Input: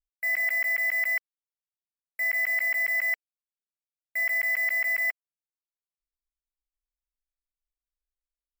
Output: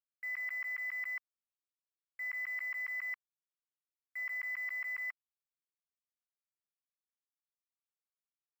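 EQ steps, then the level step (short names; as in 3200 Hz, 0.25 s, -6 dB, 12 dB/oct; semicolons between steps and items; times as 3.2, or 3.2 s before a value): ladder high-pass 1000 Hz, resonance 60%; high shelf 7100 Hz -11.5 dB; -3.5 dB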